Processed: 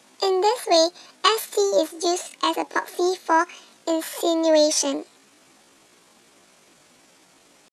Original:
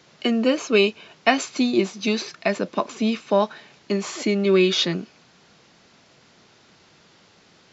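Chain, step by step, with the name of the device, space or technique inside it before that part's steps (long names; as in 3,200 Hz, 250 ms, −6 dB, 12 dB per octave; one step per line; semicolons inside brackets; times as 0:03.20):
chipmunk voice (pitch shifter +8.5 semitones)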